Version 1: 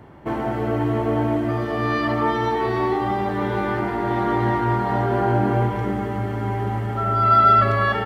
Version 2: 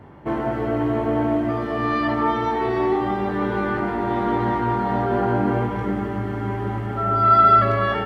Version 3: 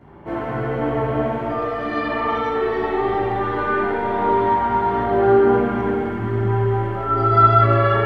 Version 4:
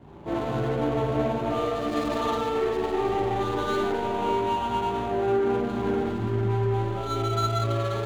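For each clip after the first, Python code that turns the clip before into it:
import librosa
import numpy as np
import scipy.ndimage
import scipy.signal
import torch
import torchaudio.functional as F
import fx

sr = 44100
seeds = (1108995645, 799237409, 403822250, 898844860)

y1 = fx.high_shelf(x, sr, hz=4200.0, db=-7.5)
y1 = fx.doubler(y1, sr, ms=21.0, db=-7.5)
y2 = fx.chorus_voices(y1, sr, voices=2, hz=0.47, base_ms=14, depth_ms=3.7, mix_pct=55)
y2 = fx.rev_spring(y2, sr, rt60_s=1.9, pass_ms=(38, 53), chirp_ms=30, drr_db=-4.0)
y3 = scipy.signal.medfilt(y2, 25)
y3 = fx.rider(y3, sr, range_db=4, speed_s=0.5)
y3 = y3 * librosa.db_to_amplitude(-5.5)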